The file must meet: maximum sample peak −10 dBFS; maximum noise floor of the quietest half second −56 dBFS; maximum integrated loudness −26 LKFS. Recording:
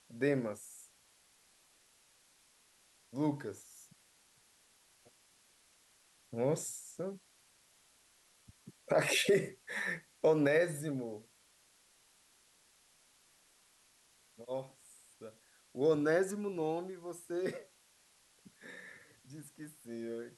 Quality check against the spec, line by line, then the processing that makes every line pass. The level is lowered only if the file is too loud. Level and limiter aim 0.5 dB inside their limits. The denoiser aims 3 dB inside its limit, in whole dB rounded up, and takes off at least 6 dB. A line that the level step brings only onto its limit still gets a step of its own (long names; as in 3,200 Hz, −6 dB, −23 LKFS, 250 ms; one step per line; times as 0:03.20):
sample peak −18.0 dBFS: in spec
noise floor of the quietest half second −68 dBFS: in spec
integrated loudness −35.0 LKFS: in spec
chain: no processing needed